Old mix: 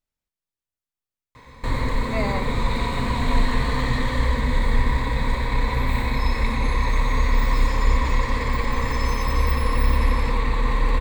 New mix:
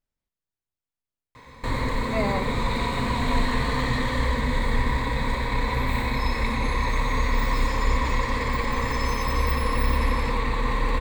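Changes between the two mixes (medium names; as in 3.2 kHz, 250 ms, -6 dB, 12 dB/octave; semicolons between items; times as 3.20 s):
speech: add tilt EQ -1.5 dB/octave; master: add bass shelf 81 Hz -6 dB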